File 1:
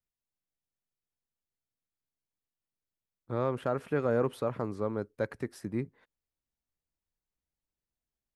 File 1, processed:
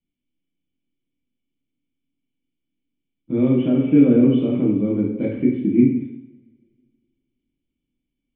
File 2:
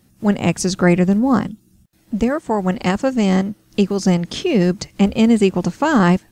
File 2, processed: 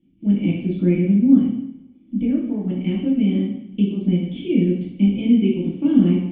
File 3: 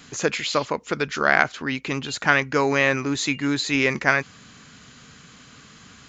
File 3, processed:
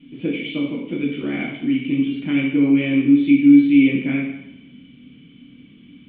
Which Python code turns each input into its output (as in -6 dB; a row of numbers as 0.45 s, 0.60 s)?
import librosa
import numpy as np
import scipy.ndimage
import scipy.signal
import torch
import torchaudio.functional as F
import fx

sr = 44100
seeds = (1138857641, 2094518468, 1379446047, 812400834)

y = fx.formant_cascade(x, sr, vowel='i')
y = fx.rev_double_slope(y, sr, seeds[0], early_s=0.75, late_s=2.2, knee_db=-26, drr_db=-5.0)
y = y * 10.0 ** (-3 / 20.0) / np.max(np.abs(y))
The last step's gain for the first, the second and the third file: +18.5 dB, -1.0 dB, +5.5 dB